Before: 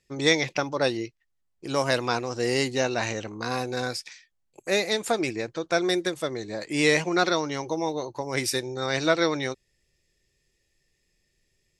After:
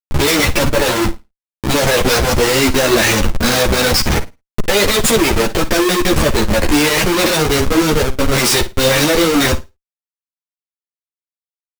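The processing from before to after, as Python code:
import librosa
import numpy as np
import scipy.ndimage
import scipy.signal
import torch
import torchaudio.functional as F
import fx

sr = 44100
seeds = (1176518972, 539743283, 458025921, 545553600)

y = scipy.signal.sosfilt(scipy.signal.ellip(3, 1.0, 40, [610.0, 1600.0], 'bandstop', fs=sr, output='sos'), x)
y = fx.high_shelf(y, sr, hz=2100.0, db=5.5)
y = fx.level_steps(y, sr, step_db=16)
y = fx.fold_sine(y, sr, drive_db=15, ceiling_db=-4.0)
y = y + 10.0 ** (-54.0 / 20.0) * np.sin(2.0 * np.pi * 4500.0 * np.arange(len(y)) / sr)
y = fx.schmitt(y, sr, flips_db=-23.0)
y = fx.room_flutter(y, sr, wall_m=9.2, rt60_s=0.23)
y = fx.ensemble(y, sr)
y = F.gain(torch.from_numpy(y), 7.0).numpy()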